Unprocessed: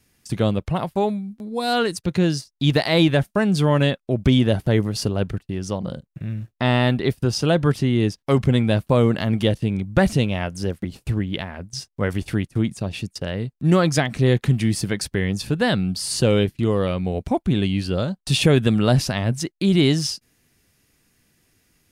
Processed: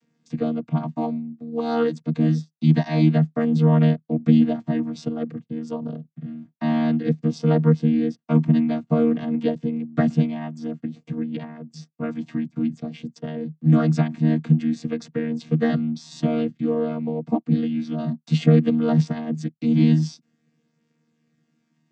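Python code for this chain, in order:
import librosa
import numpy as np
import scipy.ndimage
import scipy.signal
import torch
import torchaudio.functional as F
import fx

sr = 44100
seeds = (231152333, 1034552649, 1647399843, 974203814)

y = fx.chord_vocoder(x, sr, chord='bare fifth', root=51)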